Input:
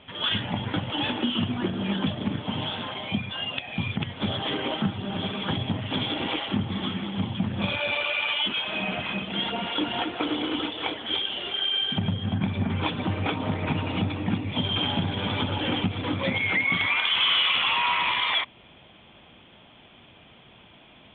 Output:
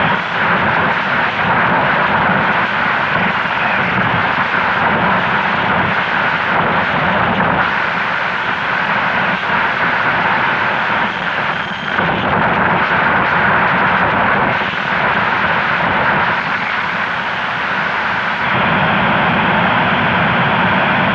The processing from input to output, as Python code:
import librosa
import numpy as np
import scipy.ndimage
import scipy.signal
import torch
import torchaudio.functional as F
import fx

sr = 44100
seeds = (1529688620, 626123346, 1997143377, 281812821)

p1 = fx.delta_mod(x, sr, bps=32000, step_db=-35.5)
p2 = p1 + 10.0 ** (-9.0 / 20.0) * np.pad(p1, (int(97 * sr / 1000.0), 0))[:len(p1)]
p3 = fx.over_compress(p2, sr, threshold_db=-34.0, ratio=-1.0)
p4 = p2 + (p3 * librosa.db_to_amplitude(-2.5))
p5 = fx.fold_sine(p4, sr, drive_db=20, ceiling_db=-10.5)
y = fx.cabinet(p5, sr, low_hz=120.0, low_slope=12, high_hz=2400.0, hz=(180.0, 300.0, 440.0, 930.0, 1500.0), db=(5, -9, -6, 6, 8))